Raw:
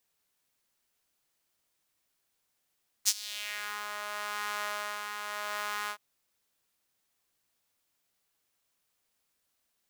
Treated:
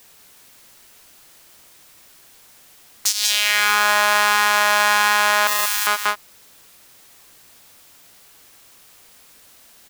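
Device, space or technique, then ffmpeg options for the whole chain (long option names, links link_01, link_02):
loud club master: -filter_complex "[0:a]asettb=1/sr,asplit=3[link_01][link_02][link_03];[link_01]atrim=end=5.474[link_04];[link_02]atrim=start=5.47:end=5.87,asetpts=PTS-STARTPTS,afade=type=in:duration=0.004:curve=qsin,afade=type=out:start_time=0.396:duration=0.004:curve=qsin,aderivative[link_05];[link_03]atrim=start=5.866[link_06];[link_04][link_05]acrossfade=duration=0.004:curve1=hsin:curve2=qsin[link_07];[link_07][link_06]acrossfade=duration=0.004:curve1=qsin:curve2=hsin,asplit=2[link_08][link_09];[link_09]adelay=186.6,volume=-9dB,highshelf=frequency=4000:gain=-4.2[link_10];[link_08][link_10]amix=inputs=2:normalize=0,acompressor=threshold=-38dB:ratio=3,asoftclip=type=hard:threshold=-21.5dB,alimiter=level_in=29.5dB:limit=-1dB:release=50:level=0:latency=1,volume=-1dB"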